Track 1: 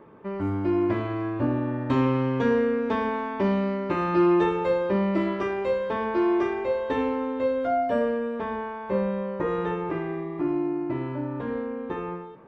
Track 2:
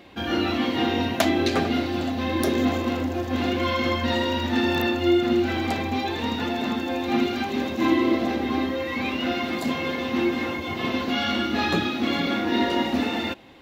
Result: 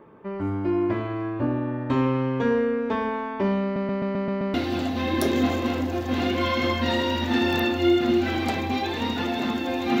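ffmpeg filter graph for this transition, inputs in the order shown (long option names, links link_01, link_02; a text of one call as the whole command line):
ffmpeg -i cue0.wav -i cue1.wav -filter_complex "[0:a]apad=whole_dur=10,atrim=end=10,asplit=7[link_01][link_02][link_03][link_04][link_05][link_06][link_07];[link_01]atrim=end=3.762[link_08];[link_02]atrim=start=3.628:end=3.762[link_09];[link_03]atrim=start=3.628:end=3.762[link_10];[link_04]atrim=start=3.628:end=3.762[link_11];[link_05]atrim=start=3.628:end=3.762[link_12];[link_06]atrim=start=3.628:end=3.762[link_13];[link_07]atrim=start=3.628:end=3.762[link_14];[1:a]atrim=start=1.758:end=7.22[link_15];[link_08][link_09]acrossfade=duration=0.004:curve1=hsin:curve2=hsin[link_16];[link_16][link_10]acrossfade=duration=0.004:curve1=hsin:curve2=hsin[link_17];[link_17][link_11]acrossfade=duration=0.004:curve1=hsin:curve2=hsin[link_18];[link_18][link_12]acrossfade=duration=0.004:curve1=hsin:curve2=hsin[link_19];[link_19][link_13]acrossfade=duration=0.004:curve1=hsin:curve2=hsin[link_20];[link_20][link_14]acrossfade=duration=0.004:curve1=hsin:curve2=hsin[link_21];[link_21][link_15]acrossfade=duration=0.004:curve1=hsin:curve2=hsin" out.wav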